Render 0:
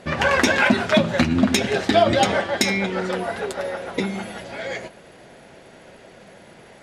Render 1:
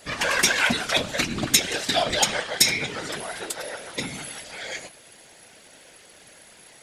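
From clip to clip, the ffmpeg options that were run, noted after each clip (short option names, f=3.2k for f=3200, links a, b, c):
-af "afftfilt=real='hypot(re,im)*cos(2*PI*random(0))':imag='hypot(re,im)*sin(2*PI*random(1))':win_size=512:overlap=0.75,crystalizer=i=8.5:c=0,volume=-5dB"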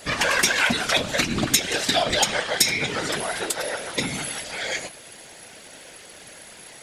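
-af "acompressor=threshold=-27dB:ratio=2,volume=6dB"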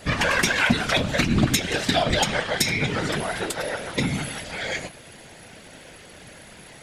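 -af "bass=f=250:g=9,treble=f=4k:g=-6"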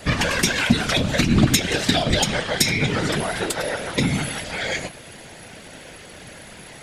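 -filter_complex "[0:a]acrossover=split=450|3000[a][b][c];[b]acompressor=threshold=-28dB:ratio=6[d];[a][d][c]amix=inputs=3:normalize=0,volume=4dB"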